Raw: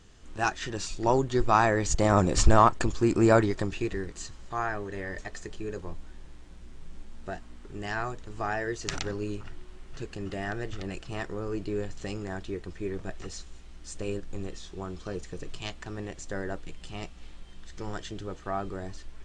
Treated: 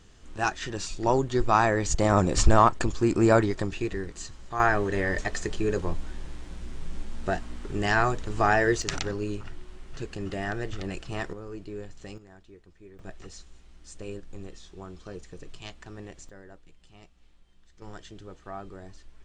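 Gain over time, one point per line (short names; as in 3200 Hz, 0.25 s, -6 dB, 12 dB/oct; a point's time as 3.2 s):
+0.5 dB
from 4.6 s +9 dB
from 8.82 s +2 dB
from 11.33 s -6.5 dB
from 12.18 s -16 dB
from 12.99 s -5 dB
from 16.29 s -14.5 dB
from 17.82 s -7 dB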